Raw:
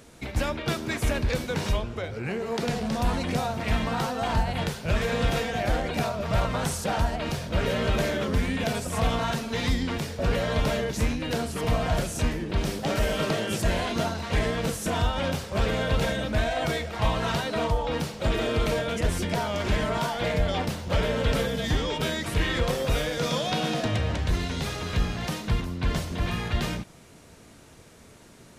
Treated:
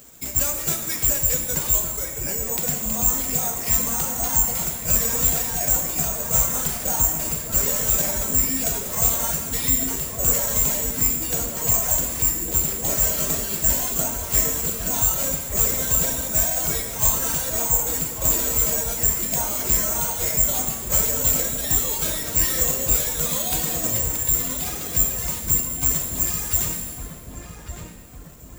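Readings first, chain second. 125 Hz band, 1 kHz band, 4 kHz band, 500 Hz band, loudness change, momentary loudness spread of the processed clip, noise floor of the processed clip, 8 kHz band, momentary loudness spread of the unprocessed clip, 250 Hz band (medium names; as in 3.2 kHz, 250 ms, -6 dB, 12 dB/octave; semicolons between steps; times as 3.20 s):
-3.5 dB, -3.5 dB, -0.5 dB, -4.5 dB, +8.0 dB, 5 LU, -37 dBFS, +20.0 dB, 4 LU, -4.0 dB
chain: careless resampling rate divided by 6×, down none, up zero stuff; on a send: filtered feedback delay 1154 ms, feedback 52%, low-pass 2 kHz, level -6 dB; on the sum: reverb removal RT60 1.8 s; pitch-shifted reverb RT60 1.6 s, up +7 st, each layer -8 dB, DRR 3 dB; trim -4 dB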